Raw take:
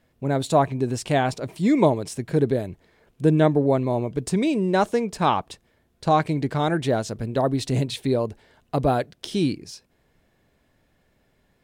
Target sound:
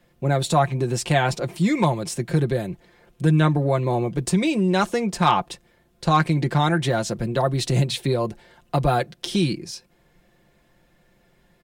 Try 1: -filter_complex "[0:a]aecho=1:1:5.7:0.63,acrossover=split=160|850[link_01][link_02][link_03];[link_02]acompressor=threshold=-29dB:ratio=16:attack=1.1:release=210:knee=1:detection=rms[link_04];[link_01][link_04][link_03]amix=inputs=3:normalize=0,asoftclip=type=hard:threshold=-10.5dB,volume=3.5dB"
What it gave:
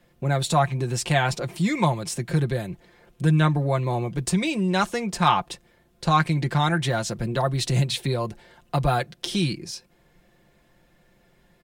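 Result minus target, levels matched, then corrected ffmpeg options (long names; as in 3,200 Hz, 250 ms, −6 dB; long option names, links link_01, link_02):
downward compressor: peak gain reduction +6.5 dB
-filter_complex "[0:a]aecho=1:1:5.7:0.63,acrossover=split=160|850[link_01][link_02][link_03];[link_02]acompressor=threshold=-22dB:ratio=16:attack=1.1:release=210:knee=1:detection=rms[link_04];[link_01][link_04][link_03]amix=inputs=3:normalize=0,asoftclip=type=hard:threshold=-10.5dB,volume=3.5dB"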